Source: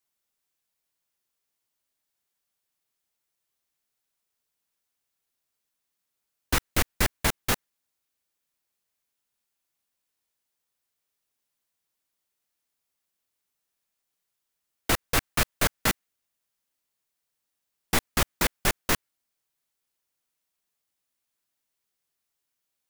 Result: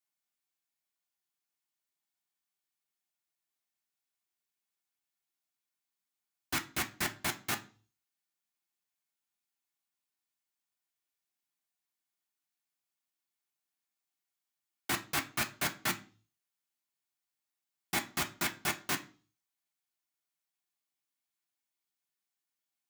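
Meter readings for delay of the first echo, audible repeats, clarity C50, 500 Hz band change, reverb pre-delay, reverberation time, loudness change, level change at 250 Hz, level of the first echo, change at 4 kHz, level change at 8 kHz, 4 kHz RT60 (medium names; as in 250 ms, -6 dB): no echo, no echo, 15.5 dB, -11.5 dB, 3 ms, 0.40 s, -7.5 dB, -8.5 dB, no echo, -7.0 dB, -7.5 dB, 0.40 s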